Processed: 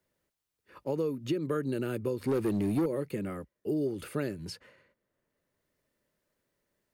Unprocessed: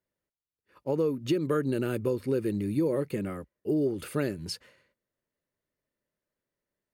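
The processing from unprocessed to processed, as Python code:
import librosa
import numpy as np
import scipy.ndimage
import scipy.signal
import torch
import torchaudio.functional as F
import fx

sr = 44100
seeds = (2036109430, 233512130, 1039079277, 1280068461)

y = fx.leveller(x, sr, passes=2, at=(2.21, 2.86))
y = fx.band_squash(y, sr, depth_pct=40)
y = F.gain(torch.from_numpy(y), -4.0).numpy()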